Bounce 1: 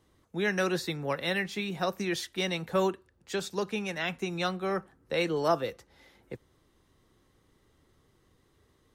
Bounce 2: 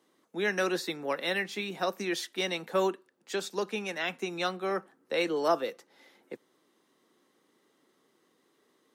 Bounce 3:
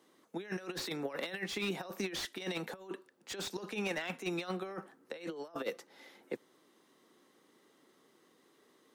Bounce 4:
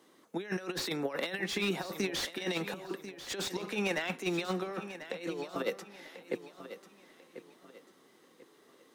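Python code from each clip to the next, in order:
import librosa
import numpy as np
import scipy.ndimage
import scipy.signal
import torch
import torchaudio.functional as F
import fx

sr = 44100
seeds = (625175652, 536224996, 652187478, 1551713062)

y1 = scipy.signal.sosfilt(scipy.signal.butter(4, 220.0, 'highpass', fs=sr, output='sos'), x)
y2 = fx.over_compress(y1, sr, threshold_db=-35.0, ratio=-0.5)
y2 = fx.slew_limit(y2, sr, full_power_hz=79.0)
y2 = y2 * librosa.db_to_amplitude(-2.5)
y3 = fx.echo_feedback(y2, sr, ms=1042, feedback_pct=33, wet_db=-12.5)
y3 = y3 * librosa.db_to_amplitude(4.0)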